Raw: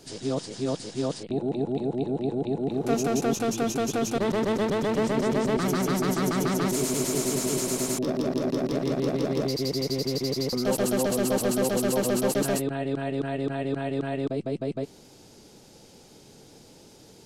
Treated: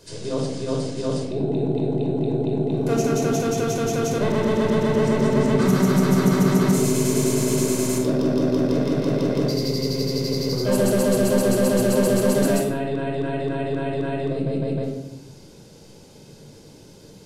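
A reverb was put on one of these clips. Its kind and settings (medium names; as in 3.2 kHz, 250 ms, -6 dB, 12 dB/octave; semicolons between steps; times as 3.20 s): simulated room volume 2500 m³, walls furnished, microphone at 5.1 m; trim -1.5 dB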